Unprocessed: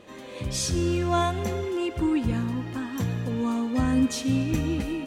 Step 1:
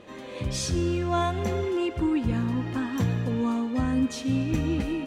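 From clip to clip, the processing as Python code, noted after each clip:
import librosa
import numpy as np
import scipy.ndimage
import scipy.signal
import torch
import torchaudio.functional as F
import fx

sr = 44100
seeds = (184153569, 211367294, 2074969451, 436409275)

y = fx.high_shelf(x, sr, hz=6800.0, db=-8.5)
y = fx.rider(y, sr, range_db=3, speed_s=0.5)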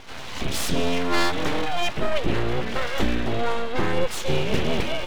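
y = fx.curve_eq(x, sr, hz=(740.0, 3600.0, 5600.0), db=(0, 8, -3))
y = np.abs(y)
y = y * 10.0 ** (5.5 / 20.0)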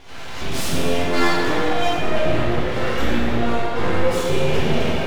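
y = fx.rev_plate(x, sr, seeds[0], rt60_s=2.5, hf_ratio=0.5, predelay_ms=0, drr_db=-7.5)
y = y * 10.0 ** (-4.5 / 20.0)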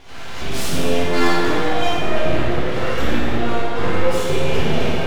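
y = fx.room_flutter(x, sr, wall_m=9.9, rt60_s=0.41)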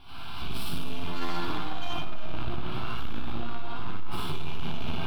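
y = fx.fixed_phaser(x, sr, hz=1900.0, stages=6)
y = 10.0 ** (-14.0 / 20.0) * np.tanh(y / 10.0 ** (-14.0 / 20.0))
y = y * 10.0 ** (-4.0 / 20.0)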